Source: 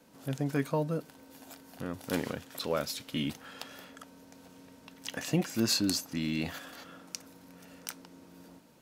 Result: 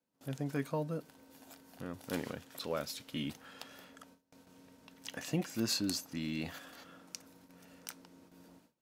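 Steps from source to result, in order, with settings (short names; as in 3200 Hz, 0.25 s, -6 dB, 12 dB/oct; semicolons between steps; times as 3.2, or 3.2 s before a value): gate with hold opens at -44 dBFS; gain -5.5 dB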